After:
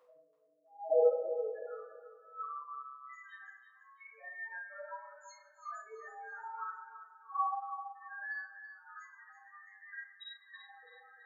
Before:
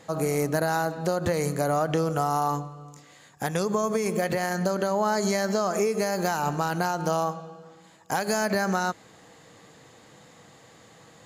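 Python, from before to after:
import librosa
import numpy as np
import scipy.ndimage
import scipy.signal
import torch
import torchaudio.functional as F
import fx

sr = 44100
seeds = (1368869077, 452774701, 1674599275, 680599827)

p1 = fx.low_shelf(x, sr, hz=76.0, db=-5.5)
p2 = fx.over_compress(p1, sr, threshold_db=-37.0, ratio=-1.0)
p3 = fx.filter_sweep_highpass(p2, sr, from_hz=92.0, to_hz=1200.0, start_s=0.23, end_s=1.66, q=0.9)
p4 = fx.comb_fb(p3, sr, f0_hz=100.0, decay_s=0.7, harmonics='all', damping=0.0, mix_pct=80)
p5 = fx.spec_topn(p4, sr, count=1)
p6 = fx.vibrato(p5, sr, rate_hz=0.51, depth_cents=7.8)
p7 = fx.filter_lfo_highpass(p6, sr, shape='sine', hz=0.61, low_hz=270.0, high_hz=3700.0, q=7.8)
p8 = fx.doubler(p7, sr, ms=31.0, db=-7.0)
p9 = p8 + fx.echo_feedback(p8, sr, ms=331, feedback_pct=33, wet_db=-11.0, dry=0)
p10 = fx.room_shoebox(p9, sr, seeds[0], volume_m3=120.0, walls='mixed', distance_m=2.5)
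y = p10 * librosa.db_to_amplitude(3.5)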